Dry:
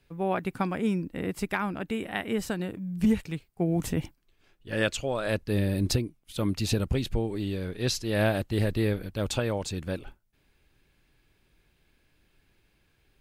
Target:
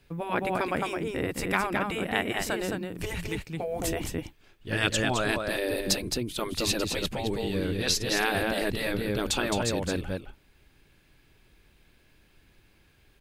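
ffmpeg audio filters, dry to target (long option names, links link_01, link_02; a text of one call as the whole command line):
ffmpeg -i in.wav -af "aecho=1:1:215:0.501,afftfilt=real='re*lt(hypot(re,im),0.2)':imag='im*lt(hypot(re,im),0.2)':win_size=1024:overlap=0.75,volume=5dB" out.wav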